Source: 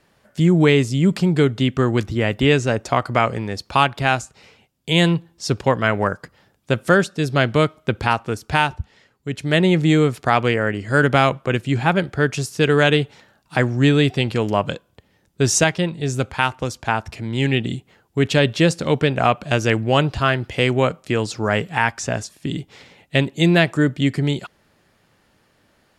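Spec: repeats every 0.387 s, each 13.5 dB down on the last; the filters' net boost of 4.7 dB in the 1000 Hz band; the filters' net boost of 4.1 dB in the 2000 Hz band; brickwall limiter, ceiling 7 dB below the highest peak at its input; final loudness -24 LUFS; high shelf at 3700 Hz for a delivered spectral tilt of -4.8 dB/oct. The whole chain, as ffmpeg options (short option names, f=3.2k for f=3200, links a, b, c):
-af "equalizer=f=1k:t=o:g=5.5,equalizer=f=2k:t=o:g=5,highshelf=f=3.7k:g=-6.5,alimiter=limit=-4.5dB:level=0:latency=1,aecho=1:1:387|774:0.211|0.0444,volume=-5dB"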